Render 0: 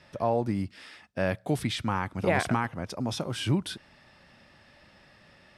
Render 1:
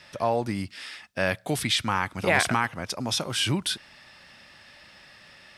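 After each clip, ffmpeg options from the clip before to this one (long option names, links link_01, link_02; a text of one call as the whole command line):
ffmpeg -i in.wav -af "tiltshelf=frequency=1100:gain=-6,volume=4.5dB" out.wav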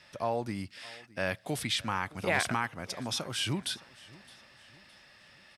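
ffmpeg -i in.wav -af "aecho=1:1:615|1230|1845:0.0794|0.0326|0.0134,volume=-6.5dB" out.wav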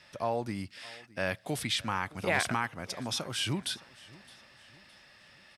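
ffmpeg -i in.wav -af anull out.wav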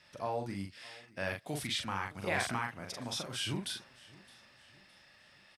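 ffmpeg -i in.wav -filter_complex "[0:a]asplit=2[link_01][link_02];[link_02]adelay=41,volume=-4dB[link_03];[link_01][link_03]amix=inputs=2:normalize=0,volume=-5.5dB" out.wav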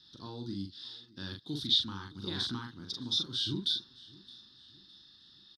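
ffmpeg -i in.wav -af "firequalizer=gain_entry='entry(170,0);entry(320,5);entry(620,-26);entry(910,-10);entry(1500,-7);entry(2300,-25);entry(3600,14);entry(7600,-15)':delay=0.05:min_phase=1" out.wav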